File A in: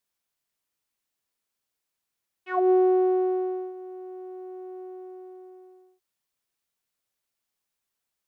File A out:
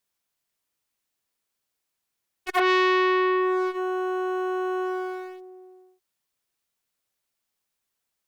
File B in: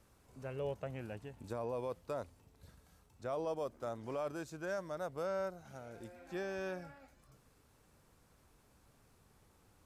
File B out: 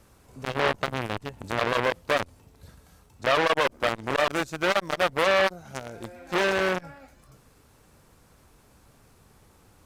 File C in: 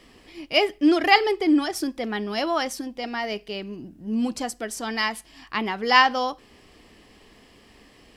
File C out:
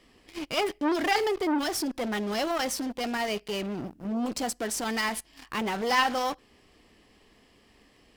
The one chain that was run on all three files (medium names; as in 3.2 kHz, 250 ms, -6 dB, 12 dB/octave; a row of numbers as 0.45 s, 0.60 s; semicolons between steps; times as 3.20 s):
in parallel at -10 dB: fuzz box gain 40 dB, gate -41 dBFS; on the sum: transformer saturation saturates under 1.7 kHz; peak normalisation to -9 dBFS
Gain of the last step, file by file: +2.5 dB, +10.5 dB, -7.0 dB